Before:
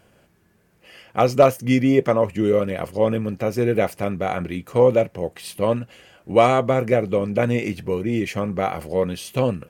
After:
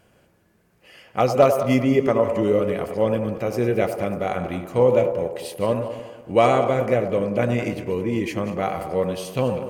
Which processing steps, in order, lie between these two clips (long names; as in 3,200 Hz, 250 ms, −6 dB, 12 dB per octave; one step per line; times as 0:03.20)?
feedback delay that plays each chunk backwards 109 ms, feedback 52%, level −12.5 dB
delay with a band-pass on its return 96 ms, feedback 60%, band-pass 630 Hz, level −7 dB
level −2 dB